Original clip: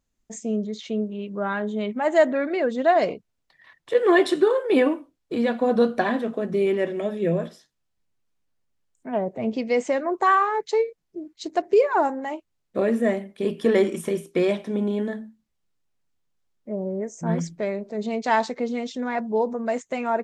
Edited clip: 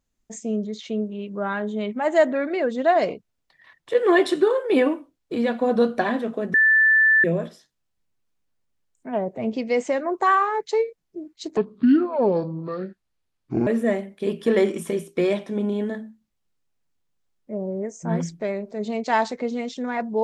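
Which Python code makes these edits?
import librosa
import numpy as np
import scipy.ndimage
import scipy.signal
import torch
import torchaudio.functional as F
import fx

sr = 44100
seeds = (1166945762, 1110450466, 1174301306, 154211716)

y = fx.edit(x, sr, fx.bleep(start_s=6.54, length_s=0.7, hz=1760.0, db=-13.0),
    fx.speed_span(start_s=11.57, length_s=1.28, speed=0.61), tone=tone)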